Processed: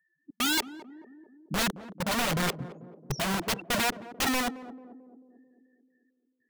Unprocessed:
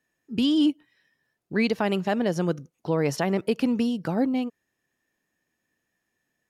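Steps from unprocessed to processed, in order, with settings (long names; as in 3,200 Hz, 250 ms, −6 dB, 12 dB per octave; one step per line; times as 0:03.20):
spectral peaks only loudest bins 4
dynamic equaliser 490 Hz, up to +3 dB, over −36 dBFS, Q 4.4
gate pattern "xxx.xx...xx" 150 BPM −60 dB
high shelf with overshoot 6,600 Hz +13.5 dB, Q 3
notch comb filter 400 Hz
in parallel at −7 dB: bit reduction 5 bits
on the sum: wrap-around overflow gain 28.5 dB
on a send: feedback echo with a band-pass in the loop 220 ms, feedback 64%, band-pass 330 Hz, level −11 dB
on the sum: level +7 dB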